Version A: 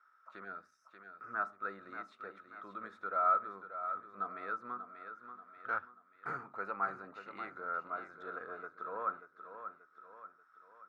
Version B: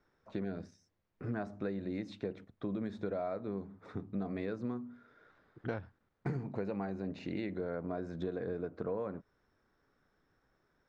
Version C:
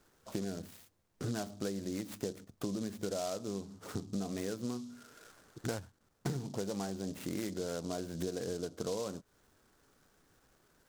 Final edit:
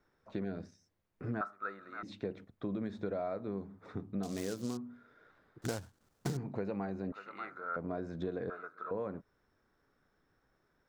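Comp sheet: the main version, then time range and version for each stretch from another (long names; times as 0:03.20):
B
0:01.41–0:02.03: punch in from A
0:04.23–0:04.77: punch in from C
0:05.62–0:06.37: punch in from C
0:07.12–0:07.76: punch in from A
0:08.50–0:08.91: punch in from A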